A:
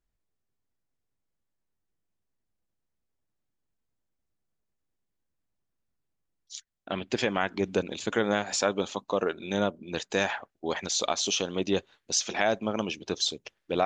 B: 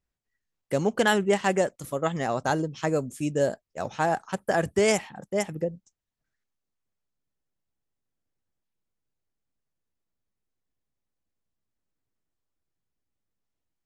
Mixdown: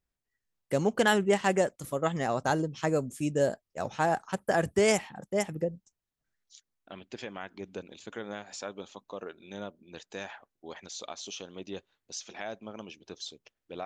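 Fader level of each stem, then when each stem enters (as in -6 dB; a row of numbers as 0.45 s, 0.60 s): -13.0 dB, -2.0 dB; 0.00 s, 0.00 s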